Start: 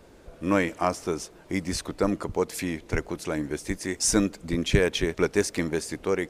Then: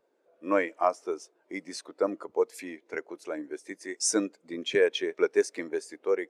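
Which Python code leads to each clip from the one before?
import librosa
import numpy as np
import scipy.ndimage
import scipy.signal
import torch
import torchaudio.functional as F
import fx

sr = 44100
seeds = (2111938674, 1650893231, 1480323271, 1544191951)

y = scipy.signal.sosfilt(scipy.signal.butter(2, 410.0, 'highpass', fs=sr, output='sos'), x)
y = fx.spectral_expand(y, sr, expansion=1.5)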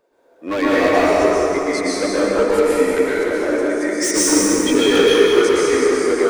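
y = np.clip(10.0 ** (26.5 / 20.0) * x, -1.0, 1.0) / 10.0 ** (26.5 / 20.0)
y = y + 10.0 ** (-7.0 / 20.0) * np.pad(y, (int(193 * sr / 1000.0), 0))[:len(y)]
y = fx.rev_plate(y, sr, seeds[0], rt60_s=3.8, hf_ratio=0.5, predelay_ms=105, drr_db=-9.5)
y = F.gain(torch.from_numpy(y), 8.0).numpy()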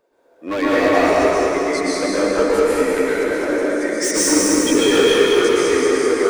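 y = fx.echo_feedback(x, sr, ms=211, feedback_pct=54, wet_db=-7.0)
y = F.gain(torch.from_numpy(y), -1.0).numpy()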